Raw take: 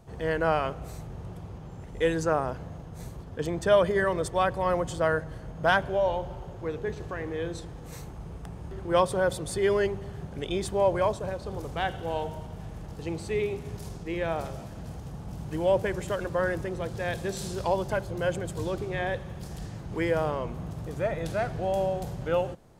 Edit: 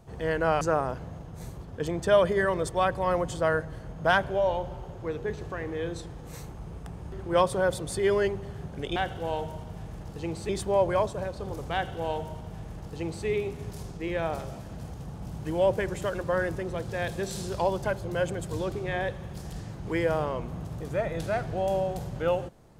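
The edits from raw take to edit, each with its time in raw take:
0:00.61–0:02.20: remove
0:11.79–0:13.32: duplicate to 0:10.55

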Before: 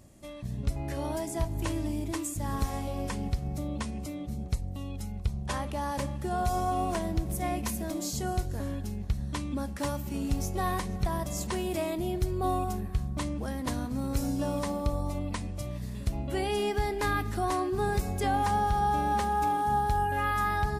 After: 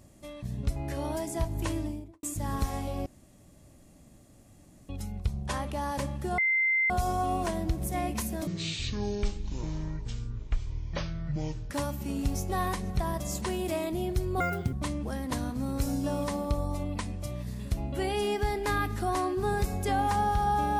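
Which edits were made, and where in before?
0:01.72–0:02.23: fade out and dull
0:03.06–0:04.89: fill with room tone
0:06.38: insert tone 2,080 Hz −22.5 dBFS 0.52 s
0:07.95–0:09.76: play speed 56%
0:12.46–0:13.08: play speed 191%

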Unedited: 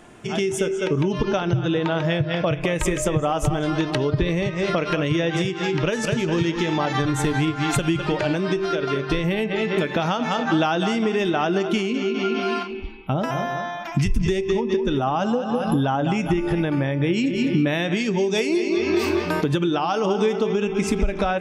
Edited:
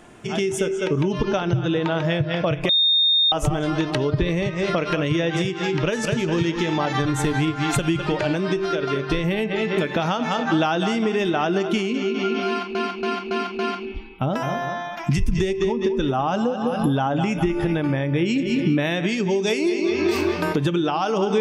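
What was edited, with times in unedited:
0:02.69–0:03.32: beep over 3,670 Hz −14.5 dBFS
0:12.47–0:12.75: repeat, 5 plays

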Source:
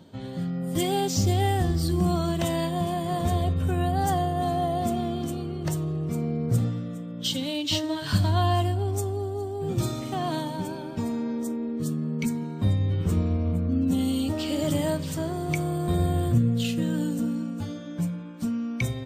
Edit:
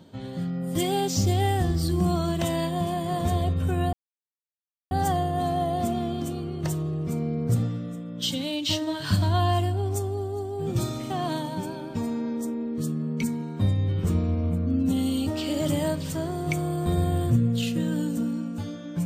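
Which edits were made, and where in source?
0:03.93: splice in silence 0.98 s

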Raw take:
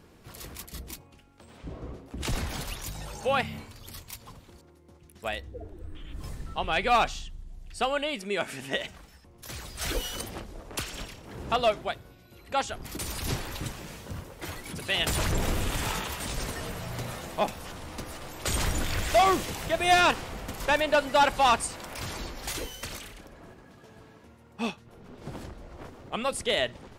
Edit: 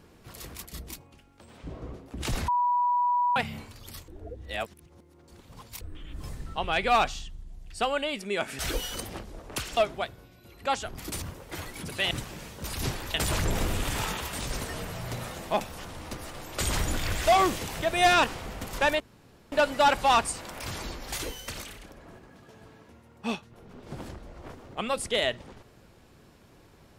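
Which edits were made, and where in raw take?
0:02.48–0:03.36: beep over 976 Hz −21.5 dBFS
0:04.08–0:05.81: reverse
0:08.59–0:09.80: remove
0:10.98–0:11.64: remove
0:13.09–0:13.59: swap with 0:14.12–0:15.01
0:20.87: splice in room tone 0.52 s

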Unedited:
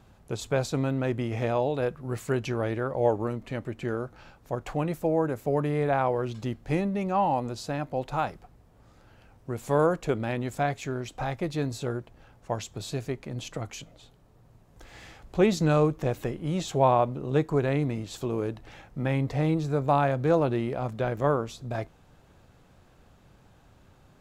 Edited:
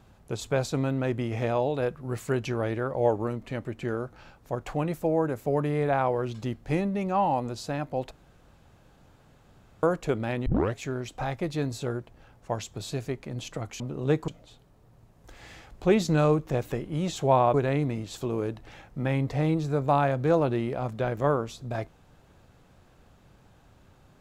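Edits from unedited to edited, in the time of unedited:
0:08.11–0:09.83: fill with room tone
0:10.46: tape start 0.29 s
0:17.06–0:17.54: move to 0:13.80

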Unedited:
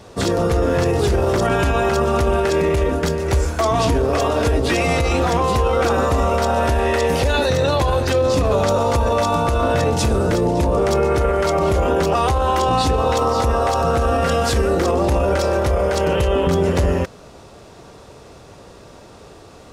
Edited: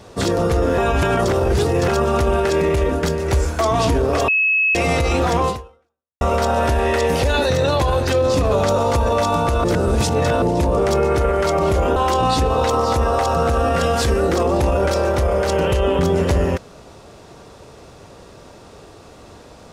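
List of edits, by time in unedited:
0:00.78–0:01.88: reverse
0:04.28–0:04.75: beep over 2,580 Hz −13.5 dBFS
0:05.48–0:06.21: fade out exponential
0:09.64–0:10.42: reverse
0:11.96–0:12.44: remove

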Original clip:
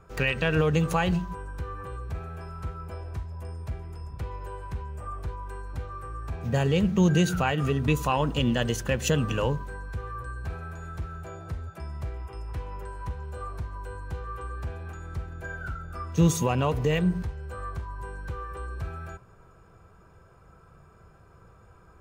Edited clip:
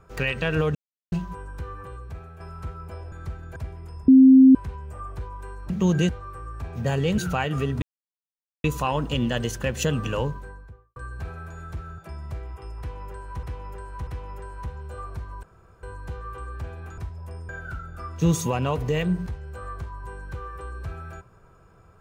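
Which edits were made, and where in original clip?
0:00.75–0:01.12: silence
0:01.67–0:02.40: fade out, to −6.5 dB
0:03.12–0:03.63: swap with 0:15.01–0:15.45
0:04.15–0:04.62: beep over 263 Hz −8 dBFS
0:06.86–0:07.25: move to 0:05.77
0:07.89: splice in silence 0.82 s
0:09.51–0:10.21: fade out and dull
0:11.23–0:11.69: remove
0:12.50–0:13.14: repeat, 3 plays
0:13.86: splice in room tone 0.40 s

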